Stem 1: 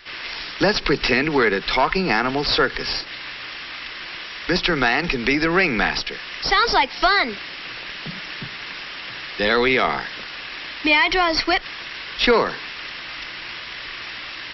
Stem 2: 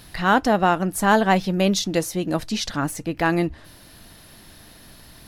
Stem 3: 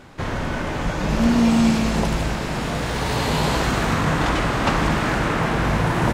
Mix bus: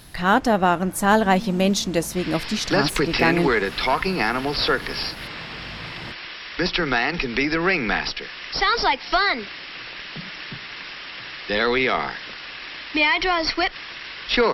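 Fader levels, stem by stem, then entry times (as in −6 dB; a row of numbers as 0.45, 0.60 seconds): −2.5, 0.0, −18.5 decibels; 2.10, 0.00, 0.00 seconds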